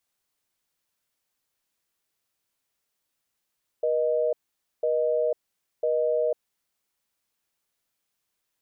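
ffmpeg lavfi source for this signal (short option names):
-f lavfi -i "aevalsrc='0.0631*(sin(2*PI*480*t)+sin(2*PI*620*t))*clip(min(mod(t,1),0.5-mod(t,1))/0.005,0,1)':d=2.6:s=44100"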